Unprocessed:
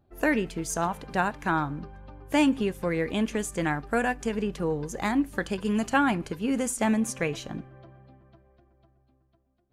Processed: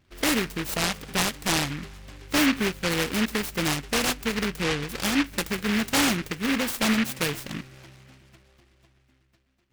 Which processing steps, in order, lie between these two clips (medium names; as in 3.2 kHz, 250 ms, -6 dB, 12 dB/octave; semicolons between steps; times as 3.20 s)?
overload inside the chain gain 18 dB; delay time shaken by noise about 1.9 kHz, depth 0.3 ms; trim +1.5 dB